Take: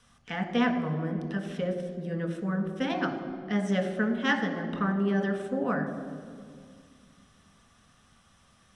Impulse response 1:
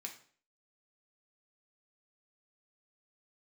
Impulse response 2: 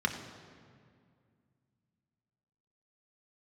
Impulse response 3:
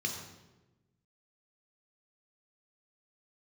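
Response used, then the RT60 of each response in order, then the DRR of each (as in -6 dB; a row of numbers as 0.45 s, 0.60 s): 2; 0.50 s, 2.2 s, 1.1 s; 1.5 dB, 3.0 dB, 1.5 dB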